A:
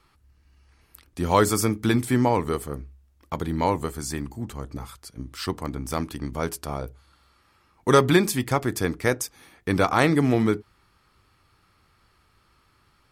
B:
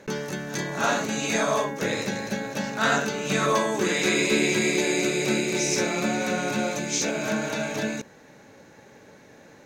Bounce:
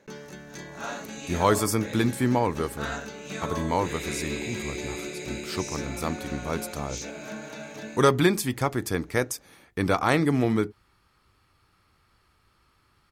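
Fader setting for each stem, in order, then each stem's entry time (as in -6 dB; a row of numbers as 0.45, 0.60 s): -2.5, -11.0 dB; 0.10, 0.00 s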